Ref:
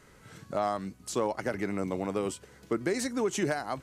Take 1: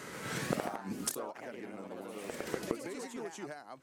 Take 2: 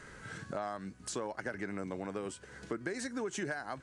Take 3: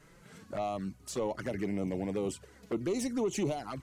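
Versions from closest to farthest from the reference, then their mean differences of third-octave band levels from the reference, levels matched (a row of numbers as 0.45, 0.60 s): 3, 2, 1; 3.0, 4.0, 10.5 dB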